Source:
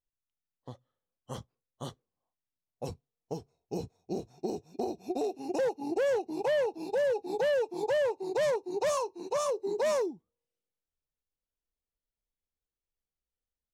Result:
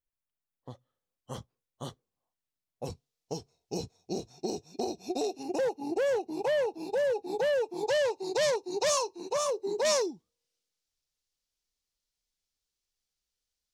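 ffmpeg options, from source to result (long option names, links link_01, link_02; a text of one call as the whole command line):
ffmpeg -i in.wav -af "asetnsamples=nb_out_samples=441:pad=0,asendcmd='0.7 equalizer g 1;2.9 equalizer g 11;5.43 equalizer g 2;7.87 equalizer g 12;9.16 equalizer g 5.5;9.85 equalizer g 14.5',equalizer=frequency=5100:width_type=o:width=1.8:gain=-6" out.wav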